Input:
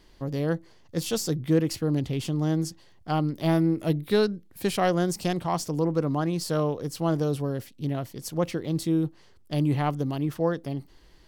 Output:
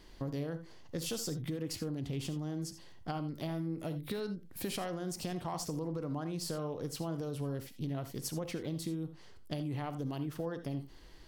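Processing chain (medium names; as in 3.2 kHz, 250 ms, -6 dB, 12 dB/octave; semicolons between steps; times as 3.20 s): peak limiter -20.5 dBFS, peak gain reduction 9.5 dB; compression 5:1, threshold -35 dBFS, peak gain reduction 10 dB; on a send: reverberation, pre-delay 3 ms, DRR 10 dB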